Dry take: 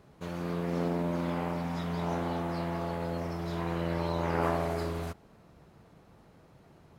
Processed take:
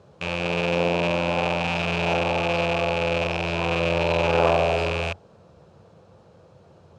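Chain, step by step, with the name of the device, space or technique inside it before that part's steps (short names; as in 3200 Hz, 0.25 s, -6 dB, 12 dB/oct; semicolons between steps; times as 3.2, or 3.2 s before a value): car door speaker with a rattle (rattling part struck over -47 dBFS, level -18 dBFS; speaker cabinet 81–8000 Hz, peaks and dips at 91 Hz +7 dB, 270 Hz -8 dB, 520 Hz +9 dB, 2000 Hz -9 dB); dynamic EQ 730 Hz, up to +6 dB, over -45 dBFS, Q 1.5; gain +4.5 dB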